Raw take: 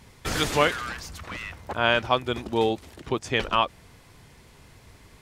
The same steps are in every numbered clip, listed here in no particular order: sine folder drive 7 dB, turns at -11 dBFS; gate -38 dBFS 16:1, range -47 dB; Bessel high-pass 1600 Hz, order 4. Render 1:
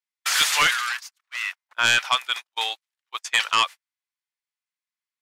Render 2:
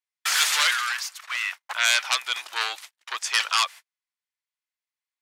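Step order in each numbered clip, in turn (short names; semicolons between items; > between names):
Bessel high-pass > gate > sine folder; gate > sine folder > Bessel high-pass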